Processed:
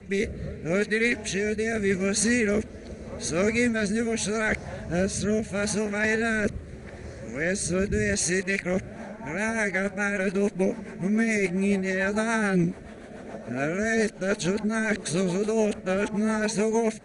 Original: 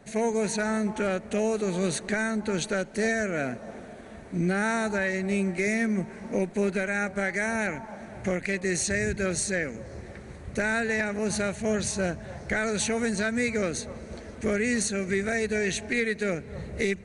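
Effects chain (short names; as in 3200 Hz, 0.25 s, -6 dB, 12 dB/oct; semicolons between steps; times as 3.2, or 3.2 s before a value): whole clip reversed; rotary speaker horn 0.8 Hz, later 7 Hz, at 8.62; gain +4 dB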